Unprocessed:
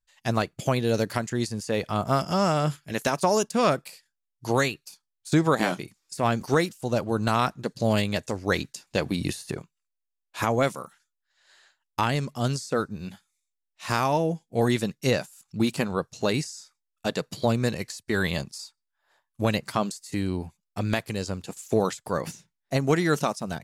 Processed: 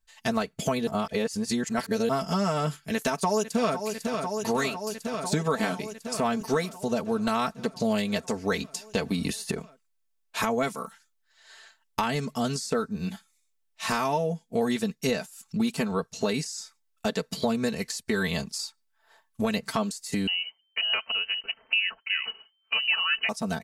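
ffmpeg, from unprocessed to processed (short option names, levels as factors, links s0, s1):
-filter_complex "[0:a]asplit=2[s0][s1];[s1]afade=t=in:st=2.79:d=0.01,afade=t=out:st=3.78:d=0.01,aecho=0:1:500|1000|1500|2000|2500|3000|3500|4000|4500|5000|5500|6000:0.266073|0.199554|0.149666|0.112249|0.084187|0.0631403|0.0473552|0.0355164|0.0266373|0.019978|0.0149835|0.0112376[s2];[s0][s2]amix=inputs=2:normalize=0,asettb=1/sr,asplit=3[s3][s4][s5];[s3]atrim=end=20.274[s6];[s4]atrim=start=20.27:end=23.29,asetpts=PTS-STARTPTS,afade=t=in:d=0.004:c=qsin,afade=t=out:st=3.016:d=0.004:c=qsin,lowpass=f=2600:t=q:w=0.5098,lowpass=f=2600:t=q:w=0.6013,lowpass=f=2600:t=q:w=0.9,lowpass=f=2600:t=q:w=2.563,afreqshift=-3100[s7];[s5]atrim=start=23.286[s8];[s6][s7]acrossfade=d=0.004:c1=hsin:c2=qsin[s9];[s9][s8]acrossfade=d=0.004:c1=qsin:c2=hsin,asplit=3[s10][s11][s12];[s10]atrim=end=0.872[s13];[s11]atrim=start=0.868:end=2.092,asetpts=PTS-STARTPTS,areverse[s14];[s12]atrim=start=2.088[s15];[s13][s14]acrossfade=d=0.004:c1=hsin:c2=hsin[s16];[s16][s15]acrossfade=d=0.004:c1=hsin:c2=hsin,aecho=1:1:4.5:0.78,acompressor=threshold=0.0224:ratio=2.5,volume=1.78"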